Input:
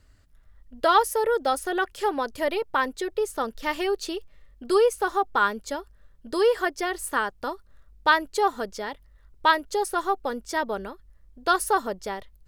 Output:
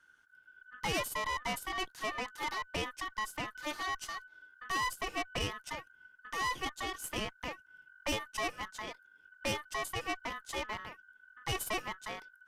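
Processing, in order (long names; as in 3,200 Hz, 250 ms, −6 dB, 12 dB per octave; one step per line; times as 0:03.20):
ring modulation 1,500 Hz
tube saturation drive 26 dB, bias 0.7
dynamic equaliser 2,200 Hz, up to −4 dB, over −43 dBFS, Q 0.98
level −1.5 dB
Ogg Vorbis 128 kbit/s 32,000 Hz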